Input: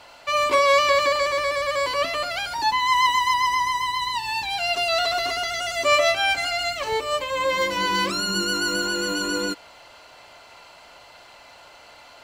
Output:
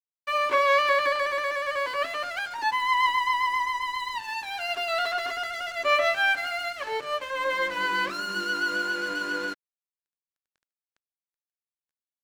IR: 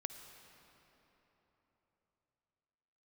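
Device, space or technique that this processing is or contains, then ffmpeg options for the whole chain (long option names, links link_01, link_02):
pocket radio on a weak battery: -af "highpass=280,lowpass=3500,aeval=exprs='sgn(val(0))*max(abs(val(0))-0.0133,0)':channel_layout=same,equalizer=frequency=1600:width_type=o:width=0.46:gain=9,volume=-4dB"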